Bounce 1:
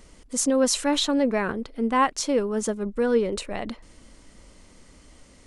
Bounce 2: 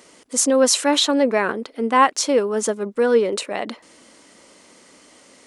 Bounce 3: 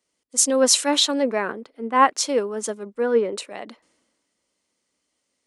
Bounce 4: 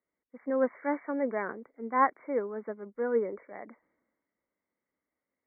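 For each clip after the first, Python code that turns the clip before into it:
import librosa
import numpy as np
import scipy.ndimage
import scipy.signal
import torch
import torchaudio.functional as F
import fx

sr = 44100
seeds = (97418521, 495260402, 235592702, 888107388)

y1 = scipy.signal.sosfilt(scipy.signal.butter(2, 300.0, 'highpass', fs=sr, output='sos'), x)
y1 = F.gain(torch.from_numpy(y1), 6.5).numpy()
y2 = fx.band_widen(y1, sr, depth_pct=70)
y2 = F.gain(torch.from_numpy(y2), -4.5).numpy()
y3 = fx.brickwall_lowpass(y2, sr, high_hz=2300.0)
y3 = F.gain(torch.from_numpy(y3), -8.5).numpy()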